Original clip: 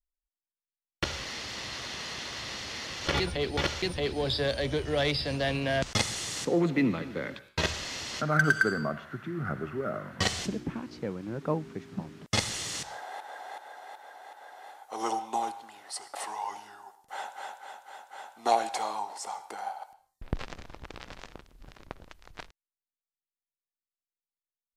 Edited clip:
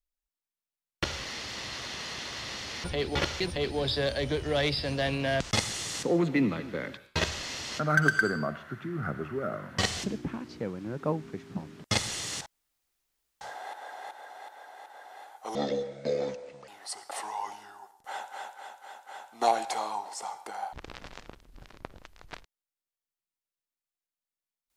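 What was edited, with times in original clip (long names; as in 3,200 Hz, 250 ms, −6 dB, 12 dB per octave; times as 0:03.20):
0:02.84–0:03.26: remove
0:12.88: splice in room tone 0.95 s
0:15.02–0:15.72: play speed 62%
0:19.77–0:20.79: remove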